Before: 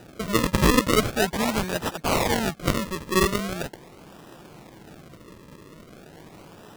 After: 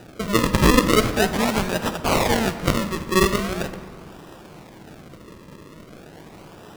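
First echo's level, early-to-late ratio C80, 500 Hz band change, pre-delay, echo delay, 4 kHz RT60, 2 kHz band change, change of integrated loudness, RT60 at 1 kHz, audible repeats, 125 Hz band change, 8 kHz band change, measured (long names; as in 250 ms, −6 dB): no echo audible, 12.5 dB, +3.5 dB, 31 ms, no echo audible, 1.1 s, +3.0 dB, +3.0 dB, 1.7 s, no echo audible, +3.5 dB, +2.0 dB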